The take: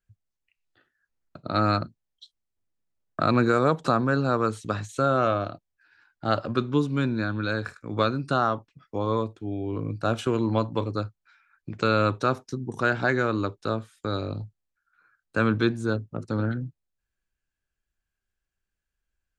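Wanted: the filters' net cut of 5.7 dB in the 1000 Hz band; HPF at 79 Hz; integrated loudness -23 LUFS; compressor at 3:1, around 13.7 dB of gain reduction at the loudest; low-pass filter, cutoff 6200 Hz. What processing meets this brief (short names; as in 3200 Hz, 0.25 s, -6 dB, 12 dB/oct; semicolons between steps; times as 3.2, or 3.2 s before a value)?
HPF 79 Hz; LPF 6200 Hz; bell 1000 Hz -8.5 dB; compressor 3:1, threshold -38 dBFS; gain +17 dB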